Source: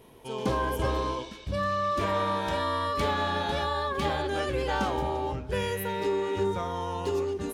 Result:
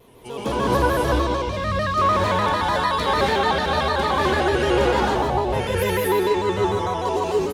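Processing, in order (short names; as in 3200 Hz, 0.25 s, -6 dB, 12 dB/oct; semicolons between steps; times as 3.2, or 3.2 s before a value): on a send: loudspeakers at several distances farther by 29 m -9 dB, 56 m -11 dB; on the sum: non-linear reverb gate 0.3 s rising, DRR -5.5 dB; shaped vibrato square 6.7 Hz, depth 100 cents; gain +1.5 dB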